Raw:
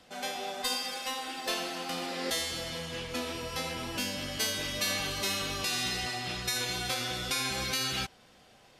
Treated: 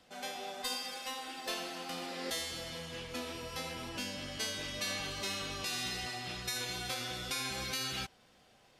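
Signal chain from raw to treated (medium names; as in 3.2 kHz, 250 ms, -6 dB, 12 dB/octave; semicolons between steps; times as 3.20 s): 3.89–5.66 s: Bessel low-pass 9.5 kHz, order 2; trim -5.5 dB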